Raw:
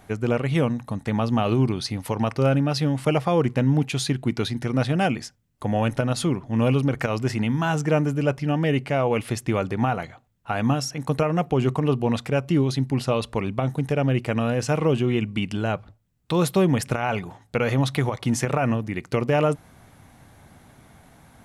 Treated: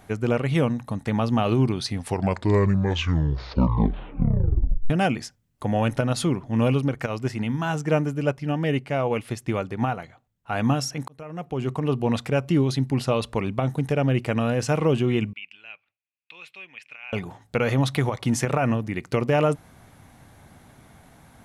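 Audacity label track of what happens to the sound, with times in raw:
1.800000	1.800000	tape stop 3.10 s
6.670000	10.520000	upward expansion, over -30 dBFS
11.080000	12.130000	fade in
15.330000	17.130000	band-pass filter 2.5 kHz, Q 7.9

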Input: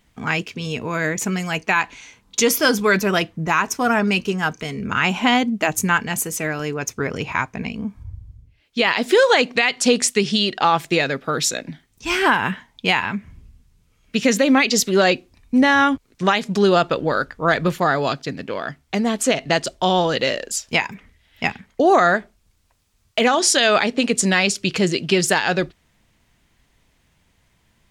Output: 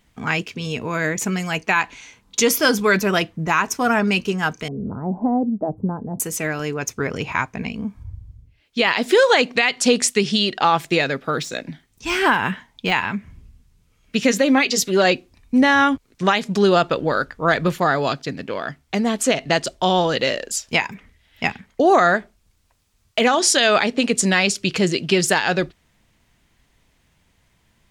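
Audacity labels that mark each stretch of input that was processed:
4.680000	6.200000	inverse Chebyshev low-pass stop band from 2.4 kHz, stop band 60 dB
11.230000	12.920000	de-esser amount 55%
14.310000	15.050000	comb of notches 220 Hz

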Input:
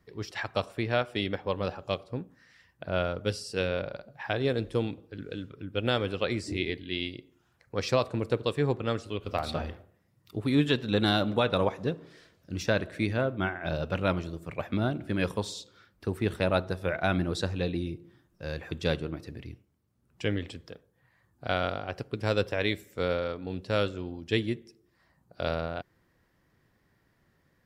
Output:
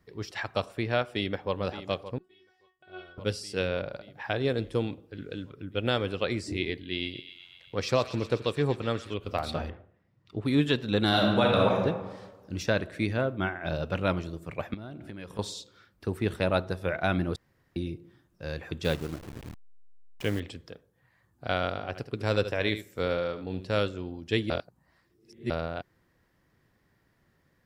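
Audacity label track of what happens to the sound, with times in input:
1.080000	1.530000	echo throw 570 ms, feedback 70%, level -12.5 dB
2.180000	3.180000	feedback comb 370 Hz, decay 0.24 s, mix 100%
6.910000	9.140000	feedback echo behind a high-pass 123 ms, feedback 73%, high-pass 1.7 kHz, level -10.5 dB
9.690000	10.440000	low-pass 2.5 kHz -> 4.5 kHz
11.080000	11.820000	reverb throw, RT60 1.3 s, DRR -1 dB
14.740000	15.390000	compression, threshold -38 dBFS
17.360000	17.760000	room tone
18.840000	20.400000	send-on-delta sampling step -39 dBFS
21.680000	23.800000	delay 75 ms -11.5 dB
24.500000	25.500000	reverse

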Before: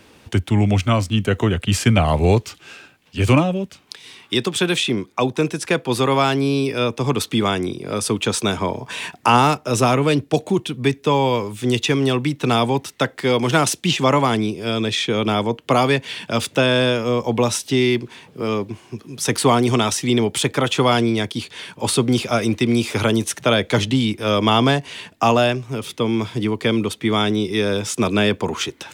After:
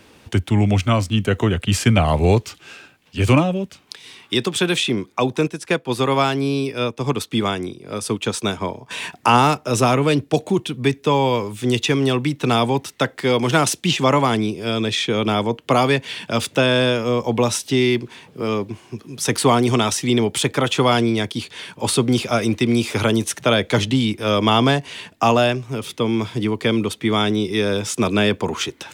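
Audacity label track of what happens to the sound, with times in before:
5.470000	8.910000	upward expansion, over -33 dBFS

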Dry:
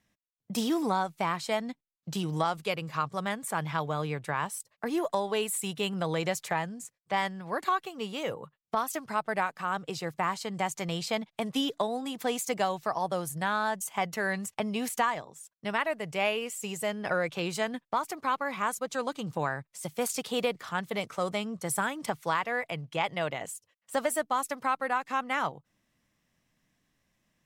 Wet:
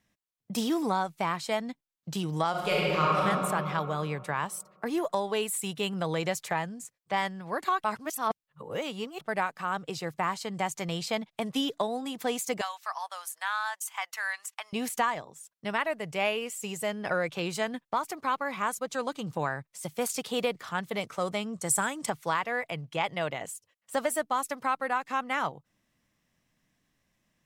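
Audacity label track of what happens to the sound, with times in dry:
2.500000	3.240000	reverb throw, RT60 2.6 s, DRR -6.5 dB
7.840000	9.210000	reverse
12.610000	14.730000	high-pass 960 Hz 24 dB/octave
21.530000	22.100000	peaking EQ 7.8 kHz +10 dB 0.67 oct

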